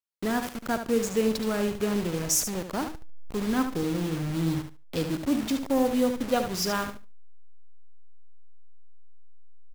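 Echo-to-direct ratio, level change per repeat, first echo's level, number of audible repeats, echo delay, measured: -8.5 dB, -15.5 dB, -8.5 dB, 2, 73 ms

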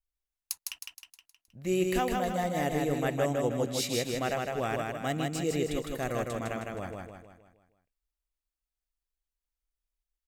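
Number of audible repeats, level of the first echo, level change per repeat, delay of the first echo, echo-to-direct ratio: 5, -3.0 dB, -6.5 dB, 0.157 s, -2.0 dB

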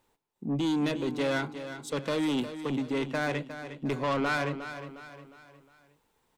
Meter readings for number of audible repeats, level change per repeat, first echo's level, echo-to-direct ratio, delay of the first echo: 4, -7.5 dB, -11.0 dB, -10.0 dB, 0.358 s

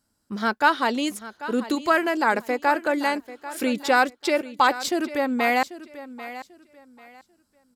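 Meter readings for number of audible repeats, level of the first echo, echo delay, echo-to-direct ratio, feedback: 2, -15.0 dB, 0.791 s, -14.5 dB, 25%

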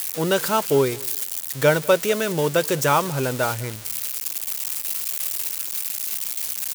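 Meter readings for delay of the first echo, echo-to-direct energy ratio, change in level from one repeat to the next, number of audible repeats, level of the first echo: 0.199 s, -23.0 dB, no steady repeat, 1, -23.0 dB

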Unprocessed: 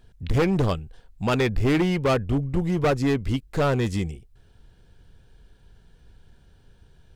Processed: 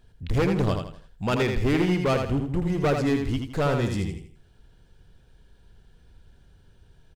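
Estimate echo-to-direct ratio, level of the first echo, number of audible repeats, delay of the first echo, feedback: -5.0 dB, -5.5 dB, 4, 82 ms, 34%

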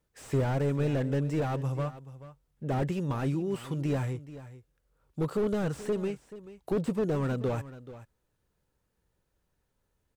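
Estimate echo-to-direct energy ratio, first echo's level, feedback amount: -15.5 dB, -15.5 dB, no steady repeat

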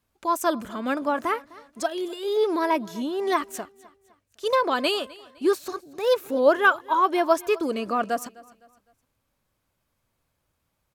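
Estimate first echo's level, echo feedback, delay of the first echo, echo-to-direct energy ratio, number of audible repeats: -21.5 dB, 38%, 0.255 s, -21.0 dB, 2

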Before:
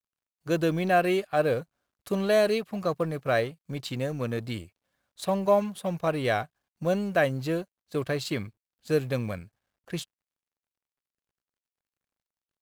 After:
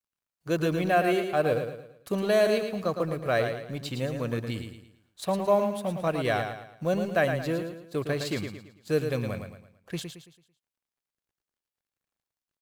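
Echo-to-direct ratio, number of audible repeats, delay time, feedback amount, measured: -6.5 dB, 4, 0.111 s, 39%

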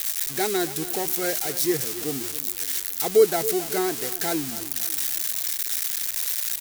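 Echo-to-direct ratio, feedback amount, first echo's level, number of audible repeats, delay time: -13.5 dB, 43%, -14.5 dB, 3, 0.274 s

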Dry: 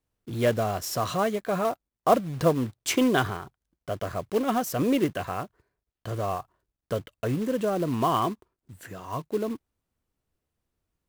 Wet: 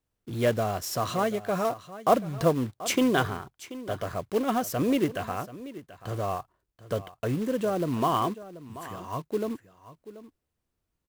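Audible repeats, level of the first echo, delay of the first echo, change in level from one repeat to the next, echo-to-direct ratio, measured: 1, -16.0 dB, 0.734 s, no steady repeat, -16.0 dB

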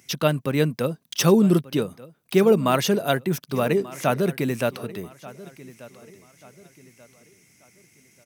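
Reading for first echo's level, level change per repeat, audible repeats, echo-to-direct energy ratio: -19.0 dB, -9.0 dB, 2, -18.5 dB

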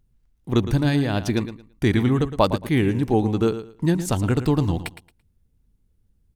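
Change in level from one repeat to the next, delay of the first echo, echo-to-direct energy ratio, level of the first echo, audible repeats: -13.5 dB, 0.112 s, -12.0 dB, -12.0 dB, 2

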